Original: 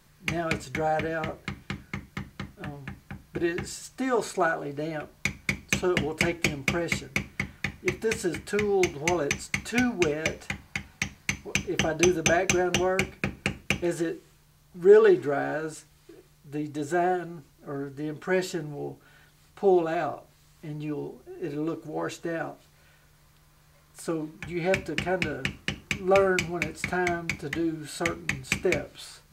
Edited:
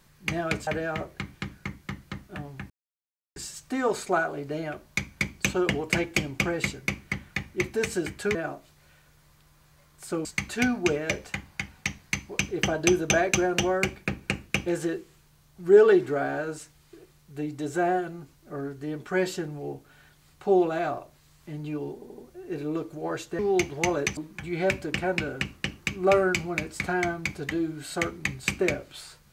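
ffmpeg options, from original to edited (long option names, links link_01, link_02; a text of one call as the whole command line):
ffmpeg -i in.wav -filter_complex "[0:a]asplit=11[link_01][link_02][link_03][link_04][link_05][link_06][link_07][link_08][link_09][link_10][link_11];[link_01]atrim=end=0.672[link_12];[link_02]atrim=start=0.948:end=2.98,asetpts=PTS-STARTPTS,afade=type=out:start_time=2.028:duration=0.004:curve=hsin[link_13];[link_03]atrim=start=2.98:end=3.64,asetpts=PTS-STARTPTS,volume=0[link_14];[link_04]atrim=start=3.64:end=8.632,asetpts=PTS-STARTPTS,afade=type=in:duration=0.004:curve=hsin[link_15];[link_05]atrim=start=22.308:end=24.212[link_16];[link_06]atrim=start=9.408:end=21.182[link_17];[link_07]atrim=start=21.098:end=21.182[link_18];[link_08]atrim=start=21.098:end=21.182[link_19];[link_09]atrim=start=21.098:end=22.312[link_20];[link_10]atrim=start=8.628:end=9.412[link_21];[link_11]atrim=start=24.208[link_22];[link_13][link_14][link_15]concat=n=3:v=0:a=1[link_23];[link_12][link_23]acrossfade=duration=0.004:curve1=hsin:curve2=hsin[link_24];[link_24][link_16]acrossfade=duration=0.004:curve1=hsin:curve2=hsin[link_25];[link_25][link_17]acrossfade=duration=0.004:curve1=hsin:curve2=hsin[link_26];[link_26][link_18]acrossfade=duration=0.004:curve1=hsin:curve2=hsin[link_27];[link_27][link_19]acrossfade=duration=0.004:curve1=hsin:curve2=hsin[link_28];[link_28][link_20]acrossfade=duration=0.004:curve1=hsin:curve2=hsin[link_29];[link_29][link_21]acrossfade=duration=0.004:curve1=hsin:curve2=hsin[link_30];[link_30][link_22]acrossfade=duration=0.004:curve1=hsin:curve2=hsin" out.wav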